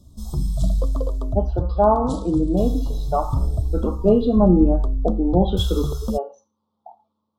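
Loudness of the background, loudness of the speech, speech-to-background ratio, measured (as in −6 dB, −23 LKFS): −26.0 LKFS, −21.5 LKFS, 4.5 dB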